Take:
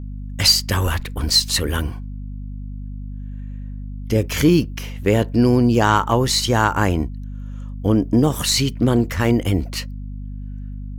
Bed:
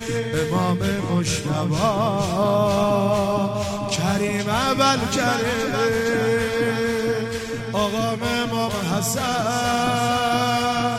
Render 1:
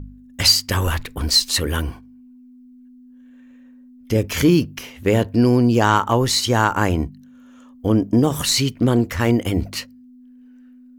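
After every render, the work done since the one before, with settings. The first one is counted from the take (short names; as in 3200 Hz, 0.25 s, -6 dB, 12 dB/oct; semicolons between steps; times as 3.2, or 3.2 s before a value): de-hum 50 Hz, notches 4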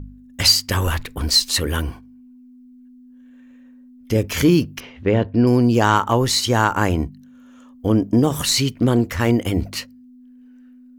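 4.8–5.47 air absorption 230 m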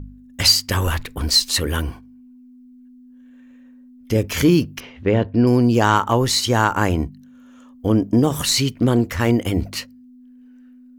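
nothing audible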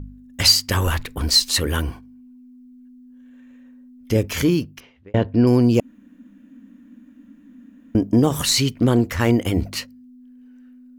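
4.16–5.14 fade out; 5.8–7.95 room tone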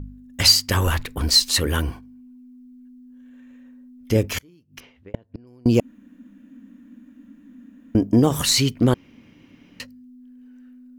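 4.35–5.66 flipped gate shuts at -14 dBFS, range -34 dB; 8.94–9.8 room tone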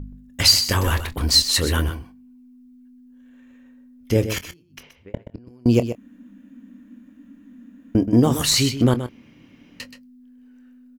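doubler 25 ms -13.5 dB; echo 0.126 s -10.5 dB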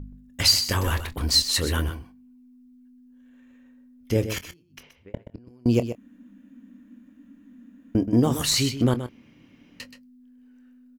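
gain -4 dB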